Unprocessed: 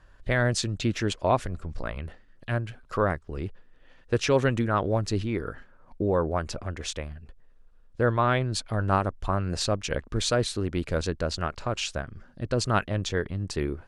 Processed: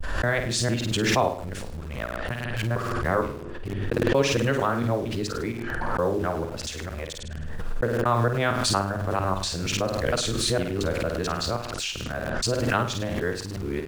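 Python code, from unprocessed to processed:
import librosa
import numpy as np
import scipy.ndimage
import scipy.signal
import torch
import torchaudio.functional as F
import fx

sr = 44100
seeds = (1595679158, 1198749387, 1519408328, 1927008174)

p1 = fx.local_reverse(x, sr, ms=230.0)
p2 = fx.low_shelf(p1, sr, hz=73.0, db=-5.5)
p3 = fx.hum_notches(p2, sr, base_hz=50, count=8)
p4 = fx.room_flutter(p3, sr, wall_m=8.8, rt60_s=0.43)
p5 = fx.quant_dither(p4, sr, seeds[0], bits=6, dither='none')
p6 = p4 + (p5 * 10.0 ** (-10.5 / 20.0))
p7 = fx.vibrato(p6, sr, rate_hz=0.5, depth_cents=22.0)
p8 = fx.pre_swell(p7, sr, db_per_s=24.0)
y = p8 * 10.0 ** (-2.5 / 20.0)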